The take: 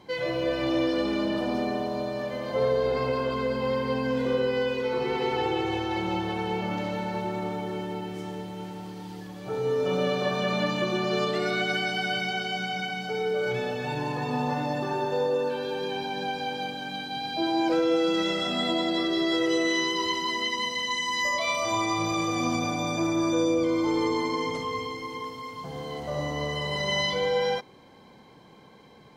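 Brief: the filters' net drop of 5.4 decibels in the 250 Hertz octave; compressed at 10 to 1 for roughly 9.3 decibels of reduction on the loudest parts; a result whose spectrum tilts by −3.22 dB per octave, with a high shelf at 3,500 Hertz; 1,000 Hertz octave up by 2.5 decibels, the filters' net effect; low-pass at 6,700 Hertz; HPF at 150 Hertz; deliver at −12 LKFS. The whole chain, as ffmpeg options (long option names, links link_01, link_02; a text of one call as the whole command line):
ffmpeg -i in.wav -af "highpass=150,lowpass=6700,equalizer=frequency=250:width_type=o:gain=-8,equalizer=frequency=1000:width_type=o:gain=3,highshelf=frequency=3500:gain=6,acompressor=threshold=-31dB:ratio=10,volume=22dB" out.wav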